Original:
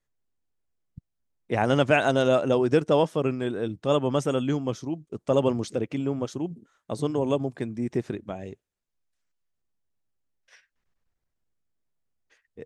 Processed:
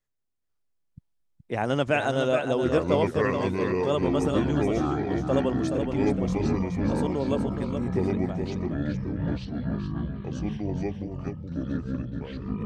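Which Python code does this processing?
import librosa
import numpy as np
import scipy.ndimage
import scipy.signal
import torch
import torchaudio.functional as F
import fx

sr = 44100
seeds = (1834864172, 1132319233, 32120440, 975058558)

p1 = fx.echo_pitch(x, sr, ms=489, semitones=-6, count=3, db_per_echo=-3.0)
p2 = p1 + fx.echo_single(p1, sr, ms=423, db=-7.0, dry=0)
y = p2 * librosa.db_to_amplitude(-3.5)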